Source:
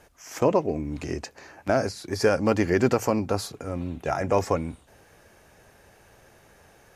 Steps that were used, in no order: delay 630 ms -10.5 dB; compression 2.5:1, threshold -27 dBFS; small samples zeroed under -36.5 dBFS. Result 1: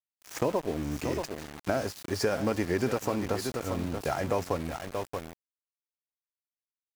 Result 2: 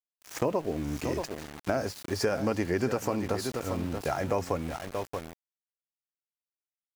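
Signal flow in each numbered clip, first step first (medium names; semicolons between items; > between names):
delay > compression > small samples zeroed; delay > small samples zeroed > compression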